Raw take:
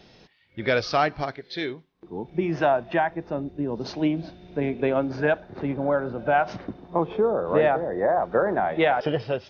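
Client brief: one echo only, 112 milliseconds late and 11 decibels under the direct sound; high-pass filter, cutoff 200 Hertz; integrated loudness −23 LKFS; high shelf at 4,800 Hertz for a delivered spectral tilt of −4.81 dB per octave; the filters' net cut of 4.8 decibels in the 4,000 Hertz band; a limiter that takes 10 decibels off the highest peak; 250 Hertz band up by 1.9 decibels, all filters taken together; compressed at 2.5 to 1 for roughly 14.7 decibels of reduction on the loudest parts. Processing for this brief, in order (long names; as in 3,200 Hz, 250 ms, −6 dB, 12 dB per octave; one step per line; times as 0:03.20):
high-pass filter 200 Hz
parametric band 250 Hz +4 dB
parametric band 4,000 Hz −8 dB
high-shelf EQ 4,800 Hz +3.5 dB
downward compressor 2.5 to 1, threshold −39 dBFS
brickwall limiter −30.5 dBFS
single-tap delay 112 ms −11 dB
level +17 dB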